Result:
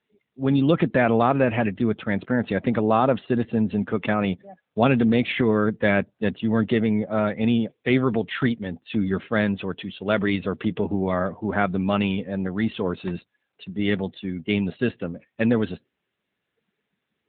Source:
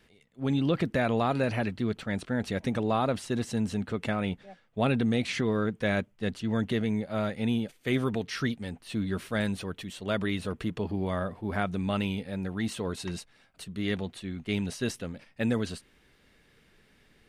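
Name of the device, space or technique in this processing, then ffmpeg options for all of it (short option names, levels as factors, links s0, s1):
mobile call with aggressive noise cancelling: -af "highpass=f=130:p=1,afftdn=nr=23:nf=-48,volume=2.66" -ar 8000 -c:a libopencore_amrnb -b:a 10200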